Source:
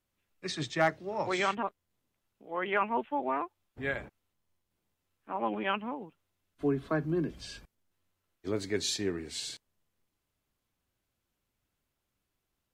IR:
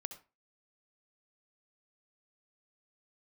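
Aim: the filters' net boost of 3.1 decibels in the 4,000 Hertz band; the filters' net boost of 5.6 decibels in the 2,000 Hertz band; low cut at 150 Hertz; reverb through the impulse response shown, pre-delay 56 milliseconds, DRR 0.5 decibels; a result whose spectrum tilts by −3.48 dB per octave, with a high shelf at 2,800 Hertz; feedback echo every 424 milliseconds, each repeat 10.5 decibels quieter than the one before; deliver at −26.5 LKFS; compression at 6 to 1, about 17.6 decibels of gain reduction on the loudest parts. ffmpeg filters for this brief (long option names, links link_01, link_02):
-filter_complex "[0:a]highpass=150,equalizer=frequency=2000:width_type=o:gain=7.5,highshelf=frequency=2800:gain=-4.5,equalizer=frequency=4000:width_type=o:gain=5,acompressor=threshold=-39dB:ratio=6,aecho=1:1:424|848|1272:0.299|0.0896|0.0269,asplit=2[link_01][link_02];[1:a]atrim=start_sample=2205,adelay=56[link_03];[link_02][link_03]afir=irnorm=-1:irlink=0,volume=2dB[link_04];[link_01][link_04]amix=inputs=2:normalize=0,volume=14dB"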